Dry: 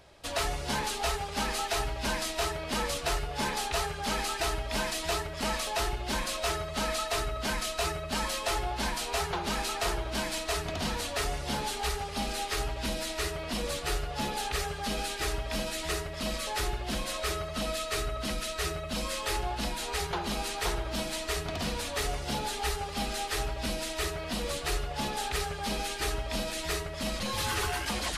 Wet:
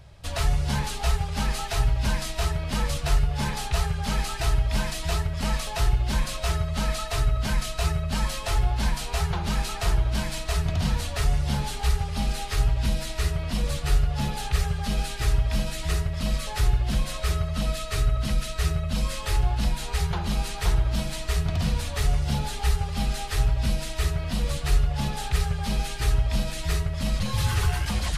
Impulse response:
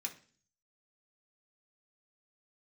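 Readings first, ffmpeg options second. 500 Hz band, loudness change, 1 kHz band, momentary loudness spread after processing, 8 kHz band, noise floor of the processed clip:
-1.5 dB, +5.0 dB, -0.5 dB, 3 LU, 0.0 dB, -34 dBFS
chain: -af "lowshelf=f=200:t=q:w=1.5:g=12.5"

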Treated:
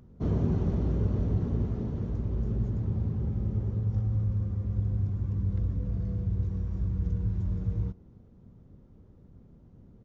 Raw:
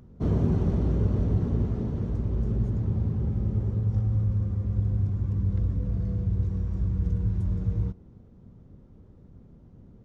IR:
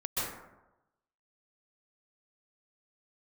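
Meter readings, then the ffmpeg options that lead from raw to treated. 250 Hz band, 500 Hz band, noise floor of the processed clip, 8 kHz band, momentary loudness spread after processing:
-3.0 dB, -3.0 dB, -55 dBFS, n/a, 4 LU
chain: -af "aresample=16000,aresample=44100,volume=-3dB"

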